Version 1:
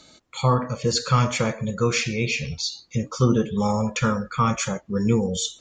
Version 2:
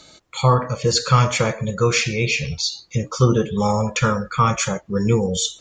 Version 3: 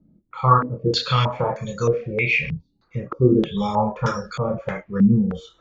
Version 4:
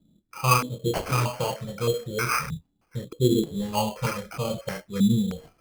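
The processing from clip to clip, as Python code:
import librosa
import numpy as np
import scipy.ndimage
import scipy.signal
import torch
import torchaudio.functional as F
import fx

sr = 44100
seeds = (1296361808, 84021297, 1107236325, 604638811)

y1 = fx.peak_eq(x, sr, hz=240.0, db=-8.0, octaves=0.35)
y1 = y1 * librosa.db_to_amplitude(4.5)
y2 = fx.chorus_voices(y1, sr, voices=6, hz=0.51, base_ms=28, depth_ms=4.1, mix_pct=40)
y2 = fx.filter_held_lowpass(y2, sr, hz=3.2, low_hz=220.0, high_hz=5500.0)
y2 = y2 * librosa.db_to_amplitude(-2.0)
y3 = fx.spec_box(y2, sr, start_s=3.05, length_s=0.68, low_hz=530.0, high_hz=2900.0, gain_db=-17)
y3 = fx.sample_hold(y3, sr, seeds[0], rate_hz=3700.0, jitter_pct=0)
y3 = y3 * librosa.db_to_amplitude(-5.0)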